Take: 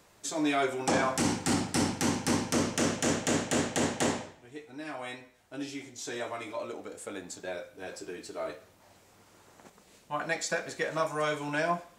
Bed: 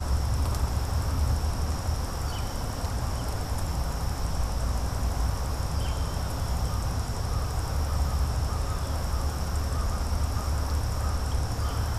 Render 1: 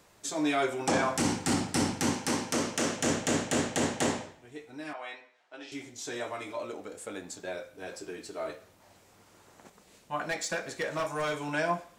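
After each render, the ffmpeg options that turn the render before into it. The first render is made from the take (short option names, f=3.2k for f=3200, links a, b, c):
-filter_complex "[0:a]asettb=1/sr,asplit=3[a][b][c];[a]atrim=end=2.134[d];[b]atrim=start=2.13:end=3,asetpts=PTS-STARTPTS,afade=t=in:d=0.004:c=qsin,afade=t=out:st=0.866:d=0.004:c=qsin,lowshelf=f=180:g=-9[e];[c]atrim=start=2.996[f];[d][e]acrossfade=d=0.004:c1=hsin:c2=qsin[g];[g][f]acrossfade=d=0.004:c1=qsin:c2=hsin,asettb=1/sr,asplit=3[h][i][j];[h]atrim=end=4.934[k];[i]atrim=start=4.93:end=5.72,asetpts=PTS-STARTPTS,afade=t=in:d=0.004:c=qsin,afade=t=out:st=0.786:d=0.004:c=qsin,highpass=560,lowpass=4k[l];[j]atrim=start=5.716[m];[k][l]acrossfade=d=0.004:c1=hsin:c2=qsin[n];[n][m]acrossfade=d=0.004:c1=qsin:c2=hsin,asettb=1/sr,asplit=3[o][p][q];[o]atrim=end=10.244[r];[p]atrim=start=10.24:end=11.4,asetpts=PTS-STARTPTS,afade=t=in:d=0.004:c=qsin,afade=t=out:st=1.156:d=0.004:c=qsin,volume=26.5dB,asoftclip=hard,volume=-26.5dB[s];[q]atrim=start=11.396[t];[r][s]acrossfade=d=0.004:c1=hsin:c2=qsin[u];[u][t]acrossfade=d=0.004:c1=qsin:c2=hsin"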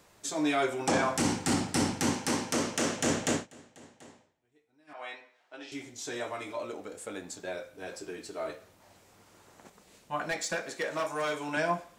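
-filter_complex "[0:a]asettb=1/sr,asplit=3[a][b][c];[a]atrim=end=10.614[d];[b]atrim=start=10.61:end=11.57,asetpts=PTS-STARTPTS,afade=t=in:d=0.004:c=qsin,afade=t=out:st=0.956:d=0.004:c=qsin,highpass=200[e];[c]atrim=start=11.566[f];[d][e]acrossfade=d=0.004:c1=hsin:c2=qsin[g];[g][f]acrossfade=d=0.004:c1=qsin:c2=hsin,asplit=3[h][i][j];[h]atrim=end=3.47,asetpts=PTS-STARTPTS,afade=t=out:st=3.31:d=0.16:silence=0.0630957[k];[i]atrim=start=3.47:end=4.87,asetpts=PTS-STARTPTS,volume=-24dB[l];[j]atrim=start=4.87,asetpts=PTS-STARTPTS,afade=t=in:d=0.16:silence=0.0630957[m];[k][l][m]concat=n=3:v=0:a=1"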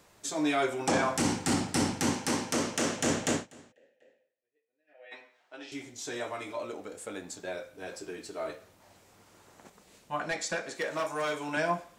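-filter_complex "[0:a]asplit=3[a][b][c];[a]afade=t=out:st=3.71:d=0.02[d];[b]asplit=3[e][f][g];[e]bandpass=f=530:t=q:w=8,volume=0dB[h];[f]bandpass=f=1.84k:t=q:w=8,volume=-6dB[i];[g]bandpass=f=2.48k:t=q:w=8,volume=-9dB[j];[h][i][j]amix=inputs=3:normalize=0,afade=t=in:st=3.71:d=0.02,afade=t=out:st=5.11:d=0.02[k];[c]afade=t=in:st=5.11:d=0.02[l];[d][k][l]amix=inputs=3:normalize=0,asettb=1/sr,asplit=3[m][n][o];[m]atrim=end=10.174[p];[n]atrim=start=10.17:end=10.75,asetpts=PTS-STARTPTS,afade=t=in:d=0.004:c=qsin,afade=t=out:st=0.576:d=0.004:c=qsin,lowpass=10k[q];[o]atrim=start=10.746[r];[p][q]acrossfade=d=0.004:c1=hsin:c2=qsin[s];[s][r]acrossfade=d=0.004:c1=qsin:c2=hsin"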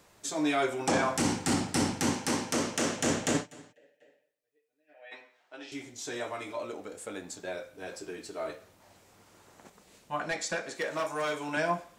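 -filter_complex "[0:a]asettb=1/sr,asplit=3[a][b][c];[a]atrim=end=3.344[d];[b]atrim=start=3.34:end=5.11,asetpts=PTS-STARTPTS,afade=t=in:d=0.004:c=qsin,afade=t=out:st=1.766:d=0.004:c=qsin,aecho=1:1:6.8:0.88,atrim=end_sample=78057[e];[c]atrim=start=5.106[f];[d][e]acrossfade=d=0.004:c1=hsin:c2=qsin[g];[g][f]acrossfade=d=0.004:c1=qsin:c2=hsin"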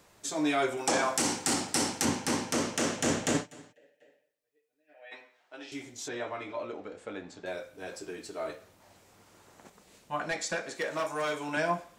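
-filter_complex "[0:a]asettb=1/sr,asplit=3[a][b][c];[a]atrim=end=0.774[d];[b]atrim=start=0.77:end=2.05,asetpts=PTS-STARTPTS,afade=t=in:d=0.004:c=qsin,afade=t=out:st=1.276:d=0.004:c=qsin,bass=f=250:g=-10,treble=f=4k:g=5[e];[c]atrim=start=2.046[f];[d][e]acrossfade=d=0.004:c1=hsin:c2=qsin[g];[g][f]acrossfade=d=0.004:c1=qsin:c2=hsin,asettb=1/sr,asplit=3[h][i][j];[h]atrim=end=6.084[k];[i]atrim=start=6.08:end=7.46,asetpts=PTS-STARTPTS,afade=t=in:d=0.004:c=qsin,afade=t=out:st=1.376:d=0.004:c=qsin,lowpass=3.5k[l];[j]atrim=start=7.456[m];[k][l]acrossfade=d=0.004:c1=hsin:c2=qsin[n];[n][m]acrossfade=d=0.004:c1=qsin:c2=hsin"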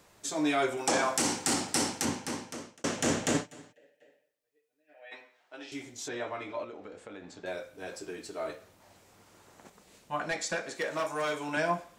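-filter_complex "[0:a]asettb=1/sr,asplit=3[a][b][c];[a]atrim=end=6.644[d];[b]atrim=start=6.64:end=7.31,asetpts=PTS-STARTPTS,afade=t=in:d=0.004:c=qsin,afade=t=out:st=0.666:d=0.004:c=qsin,acompressor=threshold=-41dB:ratio=4:attack=3.2:release=140:knee=1:detection=peak[e];[c]atrim=start=7.306[f];[d][e]acrossfade=d=0.004:c1=hsin:c2=qsin[g];[g][f]acrossfade=d=0.004:c1=qsin:c2=hsin,asplit=2[h][i];[h]atrim=end=2.84,asetpts=PTS-STARTPTS,afade=t=out:st=1.78:d=1.06[j];[i]atrim=start=2.84,asetpts=PTS-STARTPTS,afade=t=in:d=0.004:c=hsin[k];[j][k]concat=n=2:v=0:a=1"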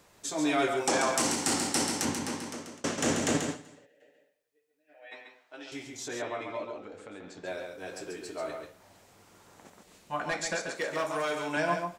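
-af "aecho=1:1:137:0.531"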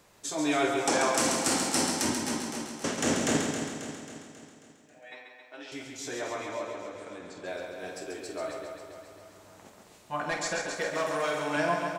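-filter_complex "[0:a]asplit=2[a][b];[b]adelay=48,volume=-8.5dB[c];[a][c]amix=inputs=2:normalize=0,aecho=1:1:270|540|810|1080|1350|1620:0.398|0.215|0.116|0.0627|0.0339|0.0183"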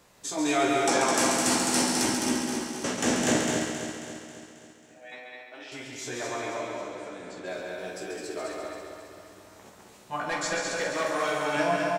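-filter_complex "[0:a]asplit=2[a][b];[b]adelay=16,volume=-5dB[c];[a][c]amix=inputs=2:normalize=0,aecho=1:1:209:0.631"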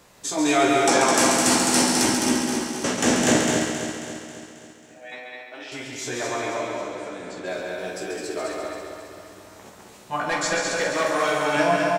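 -af "volume=5.5dB"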